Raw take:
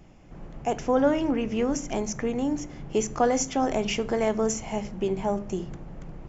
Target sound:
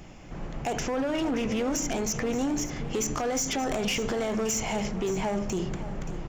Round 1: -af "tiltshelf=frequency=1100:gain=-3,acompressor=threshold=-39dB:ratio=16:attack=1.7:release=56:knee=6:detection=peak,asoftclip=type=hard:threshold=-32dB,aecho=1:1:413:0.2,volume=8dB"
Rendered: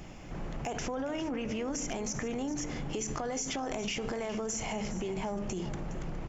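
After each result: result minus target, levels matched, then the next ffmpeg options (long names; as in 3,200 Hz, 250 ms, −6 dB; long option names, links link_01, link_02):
downward compressor: peak gain reduction +8.5 dB; echo 163 ms early
-af "tiltshelf=frequency=1100:gain=-3,acompressor=threshold=-30dB:ratio=16:attack=1.7:release=56:knee=6:detection=peak,asoftclip=type=hard:threshold=-32dB,aecho=1:1:413:0.2,volume=8dB"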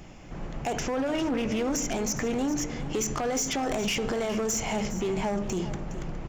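echo 163 ms early
-af "tiltshelf=frequency=1100:gain=-3,acompressor=threshold=-30dB:ratio=16:attack=1.7:release=56:knee=6:detection=peak,asoftclip=type=hard:threshold=-32dB,aecho=1:1:576:0.2,volume=8dB"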